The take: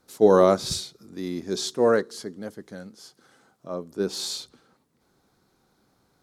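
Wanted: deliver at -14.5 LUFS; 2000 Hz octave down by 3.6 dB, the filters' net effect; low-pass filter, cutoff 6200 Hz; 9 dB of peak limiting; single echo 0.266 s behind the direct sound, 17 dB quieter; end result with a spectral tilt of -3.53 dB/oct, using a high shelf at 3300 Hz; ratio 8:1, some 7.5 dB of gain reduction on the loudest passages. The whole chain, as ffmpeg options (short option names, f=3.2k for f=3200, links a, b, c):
-af "lowpass=6.2k,equalizer=f=2k:t=o:g=-6.5,highshelf=f=3.3k:g=4.5,acompressor=threshold=-19dB:ratio=8,alimiter=limit=-20.5dB:level=0:latency=1,aecho=1:1:266:0.141,volume=18dB"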